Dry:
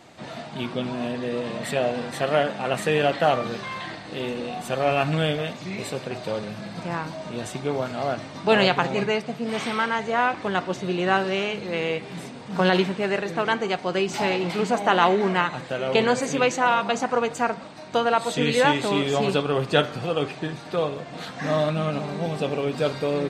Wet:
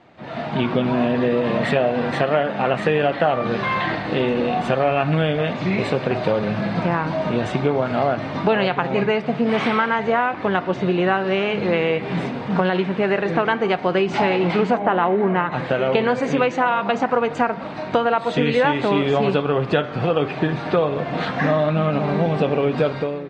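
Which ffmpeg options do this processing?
ffmpeg -i in.wav -filter_complex "[0:a]asettb=1/sr,asplit=3[link_01][link_02][link_03];[link_01]atrim=end=14.774[link_04];[link_02]atrim=start=14.77:end=15.52,asetpts=PTS-STARTPTS,afade=type=in:duration=0.004:curve=qsin,afade=type=out:start_time=0.746:duration=0.004:curve=qsin,lowpass=frequency=1300:poles=1[link_05];[link_03]atrim=start=15.516[link_06];[link_04][link_05]acrossfade=duration=0.004:curve1=hsin:curve2=qsin[link_07];[link_07][link_06]acrossfade=duration=0.004:curve1=qsin:curve2=hsin,acompressor=threshold=-29dB:ratio=4,lowpass=2600,dynaudnorm=framelen=110:gausssize=7:maxgain=15dB,volume=-1.5dB" out.wav

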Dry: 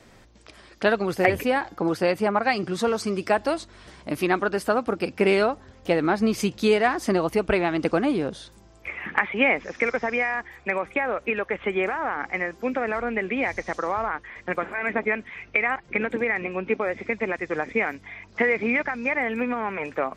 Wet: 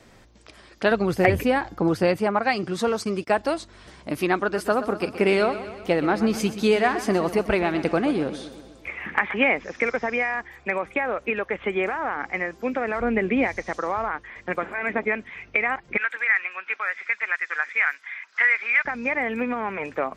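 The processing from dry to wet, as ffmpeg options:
ffmpeg -i in.wav -filter_complex "[0:a]asettb=1/sr,asplit=3[link_01][link_02][link_03];[link_01]atrim=end=0.914[link_04];[link_02]atrim=start=0.91:end=2.17,asetpts=PTS-STARTPTS,afade=type=in:duration=0.004:curve=qsin,afade=type=out:start_time=1.256:duration=0.004:curve=qsin,lowshelf=frequency=180:gain=10.5[link_05];[link_03]atrim=start=2.166[link_06];[link_04][link_05]acrossfade=duration=0.004:curve1=hsin:curve2=qsin[link_07];[link_07][link_06]acrossfade=duration=0.004:curve1=qsin:curve2=hsin,asplit=3[link_08][link_09][link_10];[link_08]afade=type=out:start_time=2.84:duration=0.02[link_11];[link_09]agate=range=-28dB:threshold=-35dB:ratio=16:release=100:detection=peak,afade=type=in:start_time=2.84:duration=0.02,afade=type=out:start_time=3.42:duration=0.02[link_12];[link_10]afade=type=in:start_time=3.42:duration=0.02[link_13];[link_11][link_12][link_13]amix=inputs=3:normalize=0,asettb=1/sr,asplit=3[link_14][link_15][link_16];[link_14]atrim=end=4.374[link_17];[link_15]atrim=start=4.37:end=9.44,asetpts=PTS-STARTPTS,afade=type=in:duration=0.004:curve=qsin,afade=type=out:start_time=5.066:duration=0.004:curve=qsin,aecho=1:1:125|250|375|500|625|750:0.224|0.132|0.0779|0.046|0.0271|0.016,atrim=end_sample=223587[link_18];[link_16]atrim=start=9.436[link_19];[link_17][link_18]acrossfade=duration=0.004:curve1=hsin:curve2=qsin[link_20];[link_20][link_19]acrossfade=duration=0.004:curve1=qsin:curve2=hsin,asettb=1/sr,asplit=3[link_21][link_22][link_23];[link_21]atrim=end=13.004[link_24];[link_22]atrim=start=13:end=13.47,asetpts=PTS-STARTPTS,afade=type=in:duration=0.004:curve=qsin,afade=type=out:start_time=0.466:duration=0.004:curve=qsin,lowshelf=frequency=480:gain=8[link_25];[link_23]atrim=start=13.466[link_26];[link_24][link_25]acrossfade=duration=0.004:curve1=hsin:curve2=qsin[link_27];[link_27][link_26]acrossfade=duration=0.004:curve1=qsin:curve2=hsin,asettb=1/sr,asplit=3[link_28][link_29][link_30];[link_28]atrim=end=15.974[link_31];[link_29]atrim=start=15.97:end=18.85,asetpts=PTS-STARTPTS,afade=type=in:duration=0.004:curve=qsin,afade=type=out:start_time=2.876:duration=0.004:curve=qsin,highpass=frequency=1500:width_type=q:width=2.6[link_32];[link_30]atrim=start=18.846[link_33];[link_31][link_32]acrossfade=duration=0.004:curve1=hsin:curve2=qsin[link_34];[link_34][link_33]acrossfade=duration=0.004:curve1=qsin:curve2=hsin" out.wav

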